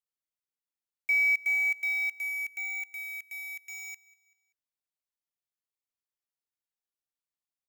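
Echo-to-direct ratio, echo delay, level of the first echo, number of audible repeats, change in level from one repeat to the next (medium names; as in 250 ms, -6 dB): -22.0 dB, 193 ms, -23.0 dB, 2, -6.5 dB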